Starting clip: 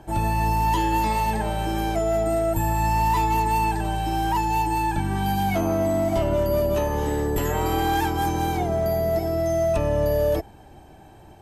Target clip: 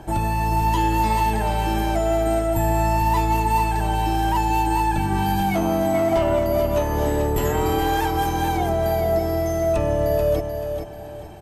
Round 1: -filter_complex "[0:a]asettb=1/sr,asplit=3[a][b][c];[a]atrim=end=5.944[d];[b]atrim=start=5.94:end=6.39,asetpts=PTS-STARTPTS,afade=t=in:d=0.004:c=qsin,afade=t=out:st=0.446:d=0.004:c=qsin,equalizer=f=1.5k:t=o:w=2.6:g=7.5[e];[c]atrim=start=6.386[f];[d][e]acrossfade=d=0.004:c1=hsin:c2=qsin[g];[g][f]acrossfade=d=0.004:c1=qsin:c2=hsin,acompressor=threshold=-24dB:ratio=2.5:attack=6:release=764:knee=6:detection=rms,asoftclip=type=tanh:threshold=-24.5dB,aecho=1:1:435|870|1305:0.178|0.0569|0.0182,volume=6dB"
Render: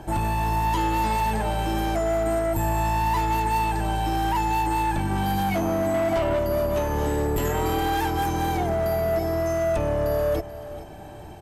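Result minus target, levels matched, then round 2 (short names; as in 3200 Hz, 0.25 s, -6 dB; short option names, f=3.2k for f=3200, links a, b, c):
soft clip: distortion +17 dB; echo-to-direct -8 dB
-filter_complex "[0:a]asettb=1/sr,asplit=3[a][b][c];[a]atrim=end=5.944[d];[b]atrim=start=5.94:end=6.39,asetpts=PTS-STARTPTS,afade=t=in:d=0.004:c=qsin,afade=t=out:st=0.446:d=0.004:c=qsin,equalizer=f=1.5k:t=o:w=2.6:g=7.5[e];[c]atrim=start=6.386[f];[d][e]acrossfade=d=0.004:c1=hsin:c2=qsin[g];[g][f]acrossfade=d=0.004:c1=qsin:c2=hsin,acompressor=threshold=-24dB:ratio=2.5:attack=6:release=764:knee=6:detection=rms,asoftclip=type=tanh:threshold=-14dB,aecho=1:1:435|870|1305|1740:0.447|0.143|0.0457|0.0146,volume=6dB"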